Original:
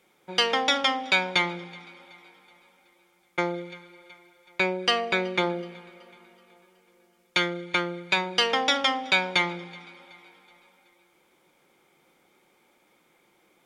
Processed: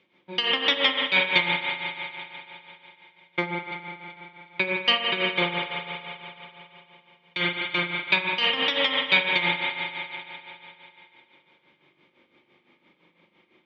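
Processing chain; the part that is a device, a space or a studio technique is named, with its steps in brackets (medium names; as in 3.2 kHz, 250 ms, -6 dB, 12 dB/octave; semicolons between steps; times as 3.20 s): combo amplifier with spring reverb and tremolo (spring tank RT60 3.1 s, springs 41 ms, chirp 45 ms, DRR -2 dB; tremolo 5.9 Hz, depth 68%; cabinet simulation 83–3900 Hz, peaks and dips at 460 Hz -6 dB, 760 Hz -10 dB, 1.4 kHz -9 dB, 2.9 kHz +3 dB); trim +3 dB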